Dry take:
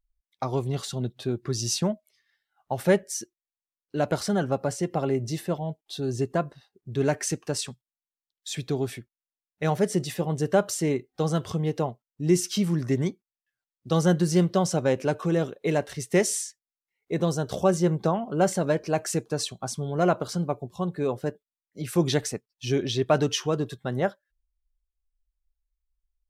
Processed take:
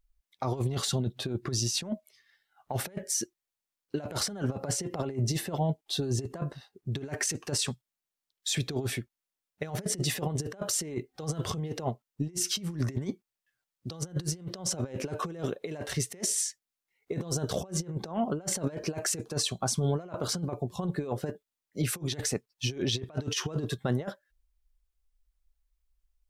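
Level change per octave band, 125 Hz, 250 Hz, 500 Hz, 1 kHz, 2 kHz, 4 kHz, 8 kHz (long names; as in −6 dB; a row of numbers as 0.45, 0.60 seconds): −4.0, −8.0, −10.0, −8.5, −5.5, +0.5, +1.5 decibels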